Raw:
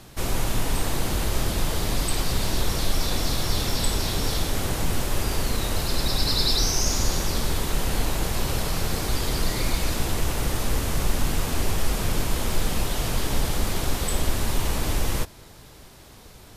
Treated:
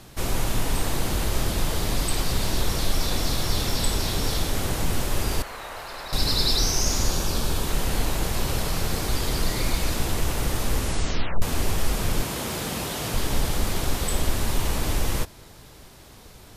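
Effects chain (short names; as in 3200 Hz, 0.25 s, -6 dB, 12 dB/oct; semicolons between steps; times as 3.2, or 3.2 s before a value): 5.42–6.13 three-band isolator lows -21 dB, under 580 Hz, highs -14 dB, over 2300 Hz; 7.1–7.65 notch 2000 Hz, Q 6.5; 10.78 tape stop 0.64 s; 12.22–13.14 HPF 110 Hz 12 dB/oct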